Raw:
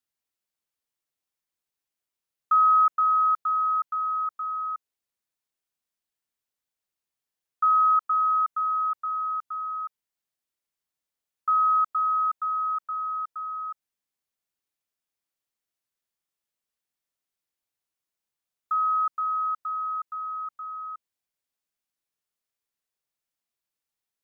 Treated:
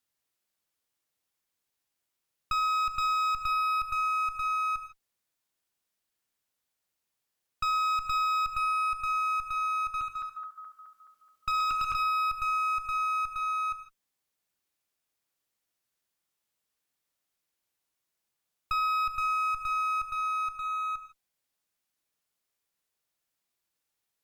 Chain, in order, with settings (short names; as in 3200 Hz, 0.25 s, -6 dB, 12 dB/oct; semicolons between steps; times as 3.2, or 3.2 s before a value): 9.8–11.94 regenerating reverse delay 0.106 s, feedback 73%, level -1 dB; limiter -19 dBFS, peak gain reduction 6.5 dB; one-sided clip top -40.5 dBFS, bottom -23 dBFS; non-linear reverb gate 0.18 s flat, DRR 9 dB; compressor, threshold -30 dBFS, peak gain reduction 5 dB; gain +4 dB